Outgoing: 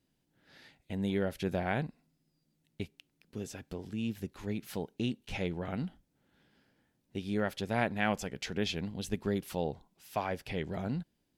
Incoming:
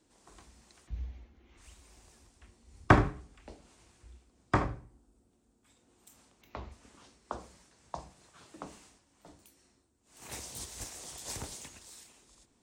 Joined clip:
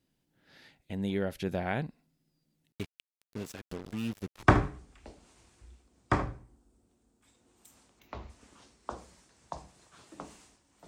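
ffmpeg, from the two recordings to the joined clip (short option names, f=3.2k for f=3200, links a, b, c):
-filter_complex "[0:a]asettb=1/sr,asplit=3[a][b][c];[a]atrim=end=2.724[d];[b]atrim=start=2.72:end=4.43,asetpts=PTS-STARTPTS,afade=t=in:d=0.004:c=qsin,afade=t=out:st=1.706:d=0.004:c=qsin,acrusher=bits=6:mix=0:aa=0.5[e];[c]atrim=start=4.426[f];[d][e]acrossfade=d=0.004:c1=hsin:c2=qsin[g];[g][f]acrossfade=d=0.004:c1=qsin:c2=hsin,apad=whole_dur=10.87,atrim=end=10.87,atrim=end=4.432[h];[1:a]atrim=start=2.848:end=9.29[i];[h][i]acrossfade=d=0.004:c1=hsin:c2=hsin"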